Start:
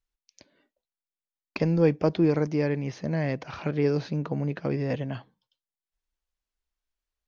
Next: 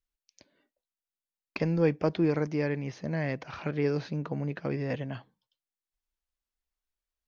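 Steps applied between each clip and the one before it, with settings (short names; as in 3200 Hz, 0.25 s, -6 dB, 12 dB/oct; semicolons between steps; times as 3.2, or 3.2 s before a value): dynamic EQ 1800 Hz, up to +4 dB, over -42 dBFS, Q 0.88; gain -4 dB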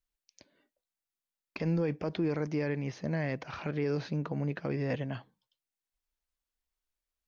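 limiter -22 dBFS, peak gain reduction 9 dB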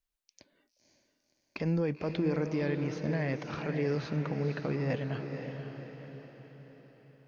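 diffused feedback echo 0.525 s, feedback 49%, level -6.5 dB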